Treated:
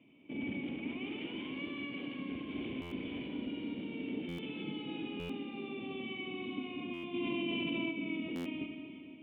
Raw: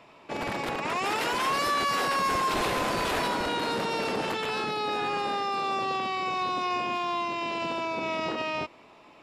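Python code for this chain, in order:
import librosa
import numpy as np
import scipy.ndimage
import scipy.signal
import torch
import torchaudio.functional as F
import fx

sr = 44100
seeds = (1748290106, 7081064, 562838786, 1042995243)

y = fx.formant_cascade(x, sr, vowel='i')
y = fx.comb(y, sr, ms=6.1, depth=0.92, at=(4.42, 5.03))
y = scipy.signal.sosfilt(scipy.signal.butter(4, 52.0, 'highpass', fs=sr, output='sos'), y)
y = fx.rev_schroeder(y, sr, rt60_s=2.7, comb_ms=31, drr_db=3.0)
y = fx.rider(y, sr, range_db=4, speed_s=2.0)
y = fx.buffer_glitch(y, sr, at_s=(2.81, 4.28, 5.19, 6.93, 8.35), block=512, repeats=8)
y = fx.env_flatten(y, sr, amount_pct=100, at=(7.13, 7.9), fade=0.02)
y = F.gain(torch.from_numpy(y), 1.0).numpy()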